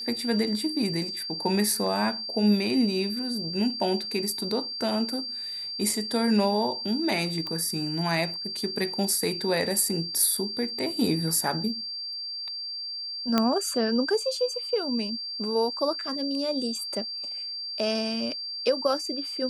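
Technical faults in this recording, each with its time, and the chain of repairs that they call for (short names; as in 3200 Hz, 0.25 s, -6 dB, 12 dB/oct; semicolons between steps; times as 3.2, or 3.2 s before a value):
tone 4700 Hz -32 dBFS
7.47 pop -20 dBFS
13.38 pop -8 dBFS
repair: de-click; notch 4700 Hz, Q 30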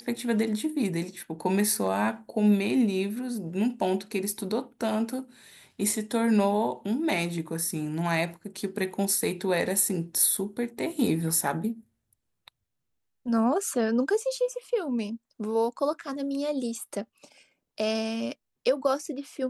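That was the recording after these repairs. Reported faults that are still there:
none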